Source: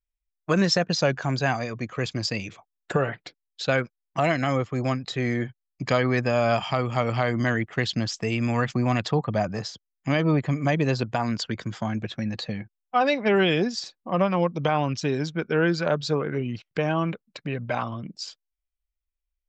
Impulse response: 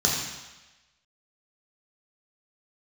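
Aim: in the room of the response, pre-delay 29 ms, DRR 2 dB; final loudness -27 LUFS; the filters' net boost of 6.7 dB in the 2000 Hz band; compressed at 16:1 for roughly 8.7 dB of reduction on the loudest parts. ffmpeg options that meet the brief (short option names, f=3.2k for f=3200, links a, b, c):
-filter_complex "[0:a]equalizer=f=2k:t=o:g=8.5,acompressor=threshold=-23dB:ratio=16,asplit=2[a][b];[1:a]atrim=start_sample=2205,adelay=29[c];[b][c]afir=irnorm=-1:irlink=0,volume=-15dB[d];[a][d]amix=inputs=2:normalize=0,volume=-1.5dB"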